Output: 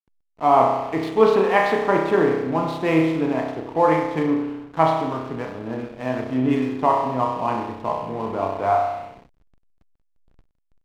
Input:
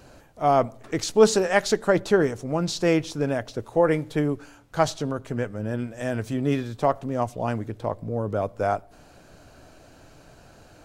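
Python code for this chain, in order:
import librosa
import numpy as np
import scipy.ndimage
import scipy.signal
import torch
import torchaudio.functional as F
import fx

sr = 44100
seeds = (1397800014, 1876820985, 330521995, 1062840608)

y = fx.cabinet(x, sr, low_hz=180.0, low_slope=12, high_hz=3200.0, hz=(200.0, 380.0, 550.0, 1000.0, 1500.0), db=(-5, -4, -9, 7, -8))
y = fx.rev_spring(y, sr, rt60_s=1.1, pass_ms=(31,), chirp_ms=25, drr_db=-0.5)
y = fx.backlash(y, sr, play_db=-36.0)
y = y * 10.0 ** (3.5 / 20.0)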